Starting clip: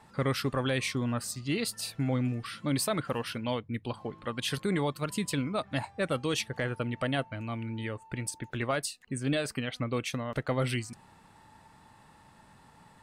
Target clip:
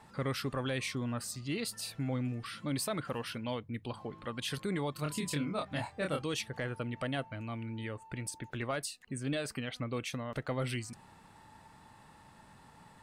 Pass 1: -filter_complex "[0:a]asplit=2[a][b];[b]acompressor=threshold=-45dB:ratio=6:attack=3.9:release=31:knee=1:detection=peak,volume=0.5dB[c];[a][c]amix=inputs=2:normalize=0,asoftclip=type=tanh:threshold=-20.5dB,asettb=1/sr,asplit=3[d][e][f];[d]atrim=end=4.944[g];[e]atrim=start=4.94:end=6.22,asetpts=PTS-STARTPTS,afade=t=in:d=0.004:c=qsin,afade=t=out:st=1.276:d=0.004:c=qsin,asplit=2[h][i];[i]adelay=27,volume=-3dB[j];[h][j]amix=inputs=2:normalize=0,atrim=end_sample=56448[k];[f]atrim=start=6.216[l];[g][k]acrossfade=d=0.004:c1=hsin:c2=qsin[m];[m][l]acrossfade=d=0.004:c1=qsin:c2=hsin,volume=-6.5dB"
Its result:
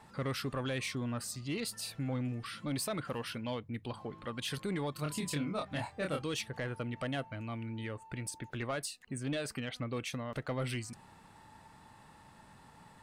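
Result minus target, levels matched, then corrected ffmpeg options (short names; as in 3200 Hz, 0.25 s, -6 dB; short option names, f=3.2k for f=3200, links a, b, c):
soft clip: distortion +16 dB
-filter_complex "[0:a]asplit=2[a][b];[b]acompressor=threshold=-45dB:ratio=6:attack=3.9:release=31:knee=1:detection=peak,volume=0.5dB[c];[a][c]amix=inputs=2:normalize=0,asoftclip=type=tanh:threshold=-11.5dB,asettb=1/sr,asplit=3[d][e][f];[d]atrim=end=4.944[g];[e]atrim=start=4.94:end=6.22,asetpts=PTS-STARTPTS,afade=t=in:d=0.004:c=qsin,afade=t=out:st=1.276:d=0.004:c=qsin,asplit=2[h][i];[i]adelay=27,volume=-3dB[j];[h][j]amix=inputs=2:normalize=0,atrim=end_sample=56448[k];[f]atrim=start=6.216[l];[g][k]acrossfade=d=0.004:c1=hsin:c2=qsin[m];[m][l]acrossfade=d=0.004:c1=qsin:c2=hsin,volume=-6.5dB"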